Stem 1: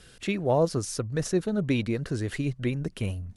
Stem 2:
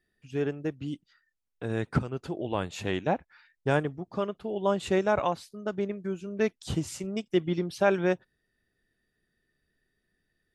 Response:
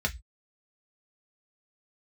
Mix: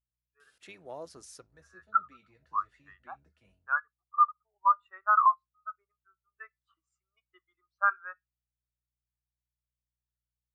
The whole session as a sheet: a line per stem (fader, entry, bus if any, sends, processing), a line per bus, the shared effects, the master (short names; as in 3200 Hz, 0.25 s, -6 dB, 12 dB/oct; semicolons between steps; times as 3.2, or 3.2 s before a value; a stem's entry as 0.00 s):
-14.0 dB, 0.40 s, send -20.5 dB, octaver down 1 oct, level -5 dB; HPF 980 Hz 6 dB/oct; auto duck -22 dB, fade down 0.35 s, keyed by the second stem
+0.5 dB, 0.00 s, send -21.5 dB, resonant high-pass 1200 Hz, resonance Q 6.6; hum 60 Hz, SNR 19 dB; spectral expander 2.5:1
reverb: on, RT60 0.10 s, pre-delay 3 ms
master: limiter -13.5 dBFS, peak gain reduction 6.5 dB